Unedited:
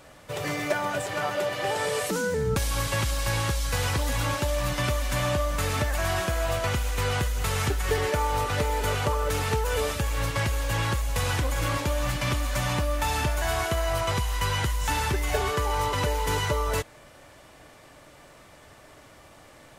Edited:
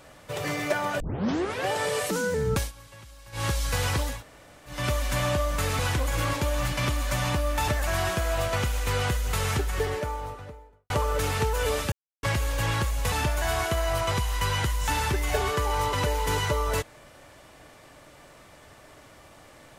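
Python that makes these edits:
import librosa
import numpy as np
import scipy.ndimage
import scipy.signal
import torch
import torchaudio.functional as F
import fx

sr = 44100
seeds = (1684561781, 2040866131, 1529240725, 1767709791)

y = fx.studio_fade_out(x, sr, start_s=7.5, length_s=1.51)
y = fx.edit(y, sr, fx.tape_start(start_s=1.0, length_s=0.68),
    fx.fade_down_up(start_s=2.59, length_s=0.86, db=-21.0, fade_s=0.13),
    fx.room_tone_fill(start_s=4.12, length_s=0.65, crossfade_s=0.24),
    fx.silence(start_s=10.03, length_s=0.31),
    fx.move(start_s=11.23, length_s=1.89, to_s=5.79), tone=tone)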